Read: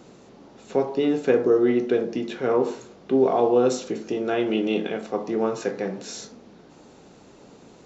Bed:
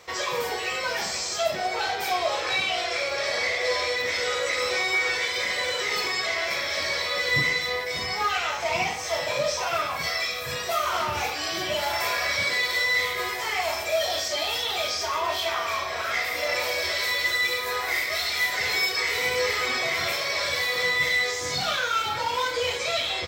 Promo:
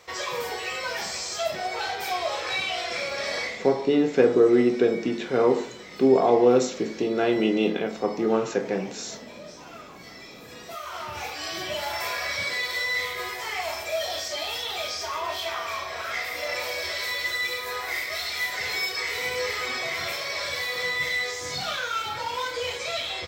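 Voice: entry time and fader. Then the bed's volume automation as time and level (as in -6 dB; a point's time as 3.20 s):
2.90 s, +1.0 dB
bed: 3.40 s -2.5 dB
3.75 s -18 dB
10.22 s -18 dB
11.45 s -3.5 dB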